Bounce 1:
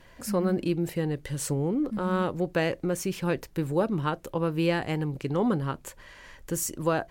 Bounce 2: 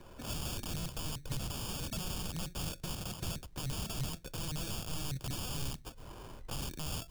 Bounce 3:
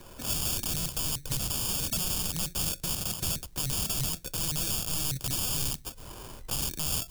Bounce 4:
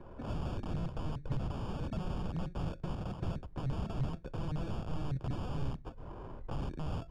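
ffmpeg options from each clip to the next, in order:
ffmpeg -i in.wav -filter_complex "[0:a]acrusher=samples=22:mix=1:aa=0.000001,aeval=exprs='(mod(23.7*val(0)+1,2)-1)/23.7':channel_layout=same,acrossover=split=170|3000[link_01][link_02][link_03];[link_02]acompressor=threshold=-48dB:ratio=8[link_04];[link_01][link_04][link_03]amix=inputs=3:normalize=0,volume=1dB" out.wav
ffmpeg -i in.wav -af "highshelf=frequency=4500:gain=12,volume=3.5dB" out.wav
ffmpeg -i in.wav -af "lowpass=1100" out.wav

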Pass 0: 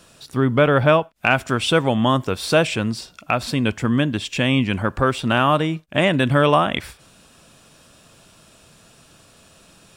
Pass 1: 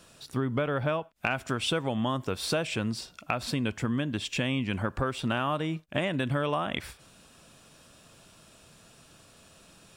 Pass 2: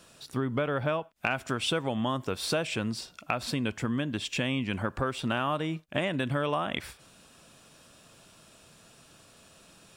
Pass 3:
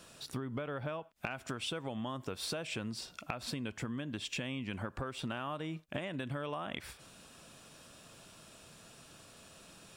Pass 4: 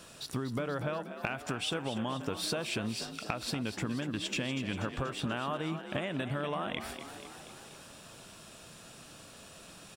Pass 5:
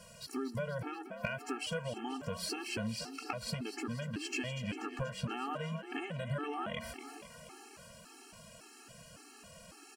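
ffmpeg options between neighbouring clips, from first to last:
ffmpeg -i in.wav -af "acompressor=threshold=-20dB:ratio=6,volume=-5dB" out.wav
ffmpeg -i in.wav -af "lowshelf=frequency=110:gain=-4.5" out.wav
ffmpeg -i in.wav -af "acompressor=threshold=-36dB:ratio=6" out.wav
ffmpeg -i in.wav -filter_complex "[0:a]asplit=8[link_01][link_02][link_03][link_04][link_05][link_06][link_07][link_08];[link_02]adelay=241,afreqshift=45,volume=-10.5dB[link_09];[link_03]adelay=482,afreqshift=90,volume=-14.8dB[link_10];[link_04]adelay=723,afreqshift=135,volume=-19.1dB[link_11];[link_05]adelay=964,afreqshift=180,volume=-23.4dB[link_12];[link_06]adelay=1205,afreqshift=225,volume=-27.7dB[link_13];[link_07]adelay=1446,afreqshift=270,volume=-32dB[link_14];[link_08]adelay=1687,afreqshift=315,volume=-36.3dB[link_15];[link_01][link_09][link_10][link_11][link_12][link_13][link_14][link_15]amix=inputs=8:normalize=0,volume=4dB" out.wav
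ffmpeg -i in.wav -af "asuperstop=centerf=3600:order=4:qfactor=5.5,afftfilt=real='re*gt(sin(2*PI*1.8*pts/sr)*(1-2*mod(floor(b*sr/1024/230),2)),0)':imag='im*gt(sin(2*PI*1.8*pts/sr)*(1-2*mod(floor(b*sr/1024/230),2)),0)':win_size=1024:overlap=0.75" out.wav

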